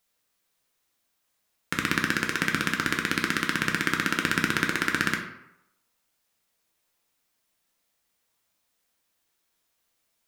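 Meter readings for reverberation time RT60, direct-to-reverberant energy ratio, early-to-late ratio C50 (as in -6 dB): 0.85 s, 1.0 dB, 6.5 dB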